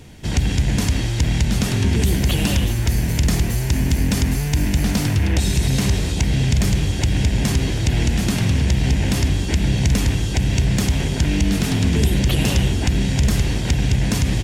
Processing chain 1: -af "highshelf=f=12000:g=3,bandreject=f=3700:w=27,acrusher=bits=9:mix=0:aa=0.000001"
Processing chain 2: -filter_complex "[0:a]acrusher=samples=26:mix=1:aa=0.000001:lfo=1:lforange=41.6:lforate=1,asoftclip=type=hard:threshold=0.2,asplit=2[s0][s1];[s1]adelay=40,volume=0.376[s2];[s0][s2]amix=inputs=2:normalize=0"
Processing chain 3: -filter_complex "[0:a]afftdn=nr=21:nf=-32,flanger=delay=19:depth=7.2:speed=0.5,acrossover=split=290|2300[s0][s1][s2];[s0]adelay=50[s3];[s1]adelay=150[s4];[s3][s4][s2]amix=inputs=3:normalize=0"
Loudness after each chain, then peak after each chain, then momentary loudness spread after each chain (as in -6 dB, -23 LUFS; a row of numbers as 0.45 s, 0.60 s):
-19.5 LUFS, -19.5 LUFS, -23.5 LUFS; -7.0 dBFS, -11.0 dBFS, -9.0 dBFS; 2 LU, 2 LU, 2 LU